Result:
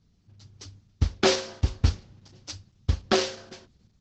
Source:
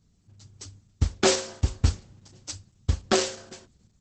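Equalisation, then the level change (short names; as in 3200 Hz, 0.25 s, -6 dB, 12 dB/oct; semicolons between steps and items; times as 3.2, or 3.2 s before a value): LPF 5900 Hz 24 dB/oct; air absorption 77 m; high shelf 4200 Hz +7 dB; 0.0 dB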